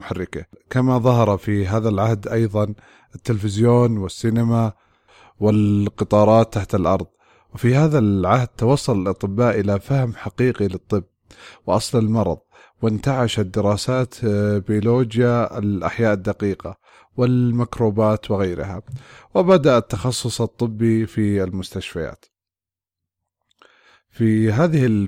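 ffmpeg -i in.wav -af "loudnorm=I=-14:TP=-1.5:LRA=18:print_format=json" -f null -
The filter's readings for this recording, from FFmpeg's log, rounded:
"input_i" : "-19.3",
"input_tp" : "-3.8",
"input_lra" : "4.1",
"input_thresh" : "-30.1",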